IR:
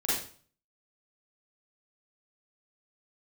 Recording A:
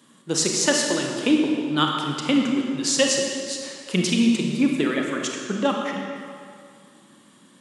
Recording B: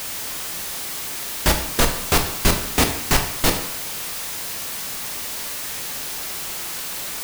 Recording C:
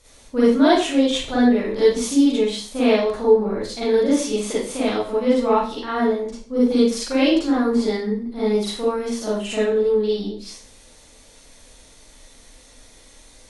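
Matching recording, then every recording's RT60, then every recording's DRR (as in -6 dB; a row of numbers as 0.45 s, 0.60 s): C; 2.3 s, 0.75 s, 0.45 s; 0.5 dB, 4.0 dB, -9.5 dB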